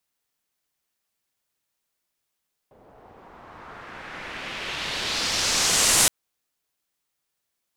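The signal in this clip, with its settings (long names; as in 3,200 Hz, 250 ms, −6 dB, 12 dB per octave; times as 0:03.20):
filter sweep on noise white, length 3.37 s lowpass, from 570 Hz, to 9,500 Hz, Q 1.5, exponential, gain ramp +25 dB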